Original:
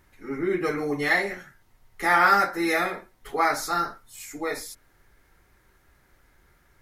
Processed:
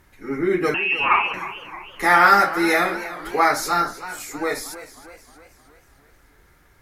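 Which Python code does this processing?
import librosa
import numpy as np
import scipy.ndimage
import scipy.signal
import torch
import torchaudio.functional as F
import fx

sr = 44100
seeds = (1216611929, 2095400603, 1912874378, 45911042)

y = fx.freq_invert(x, sr, carrier_hz=3000, at=(0.74, 1.34))
y = fx.cheby_harmonics(y, sr, harmonics=(2,), levels_db=(-30,), full_scale_db=-5.5)
y = fx.echo_warbled(y, sr, ms=313, feedback_pct=53, rate_hz=2.8, cents=114, wet_db=-14.5)
y = F.gain(torch.from_numpy(y), 5.0).numpy()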